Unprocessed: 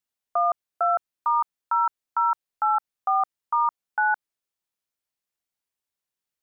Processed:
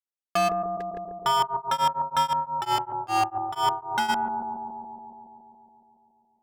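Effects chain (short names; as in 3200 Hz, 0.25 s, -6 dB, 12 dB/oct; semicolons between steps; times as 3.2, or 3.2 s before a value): treble ducked by the level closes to 1100 Hz, closed at -22.5 dBFS; 0.51–1.15 spectral repair 510–1600 Hz after; sample leveller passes 5; analogue delay 0.14 s, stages 1024, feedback 75%, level -4.5 dB; 1.41–4.08 beating tremolo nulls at 7.1 Hz -> 3.4 Hz; gain -4.5 dB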